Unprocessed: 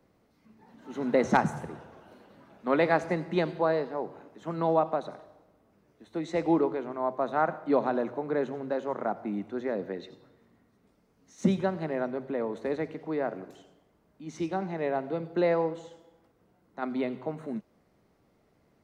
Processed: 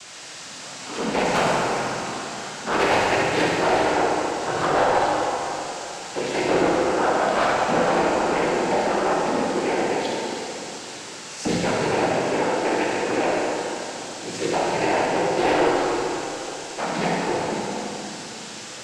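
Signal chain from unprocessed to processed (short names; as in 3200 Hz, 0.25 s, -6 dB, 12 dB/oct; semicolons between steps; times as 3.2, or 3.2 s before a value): median filter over 9 samples; HPF 790 Hz 6 dB/oct; high shelf 3800 Hz +9.5 dB; in parallel at -2.5 dB: compressor, threshold -41 dBFS, peak gain reduction 19.5 dB; on the sum: requantised 8-bit, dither triangular; sine folder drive 11 dB, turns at -7 dBFS; noise vocoder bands 8; soft clip -13.5 dBFS, distortion -11 dB; flutter echo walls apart 11.7 m, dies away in 0.7 s; plate-style reverb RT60 3.6 s, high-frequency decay 0.75×, DRR -2.5 dB; gain -5 dB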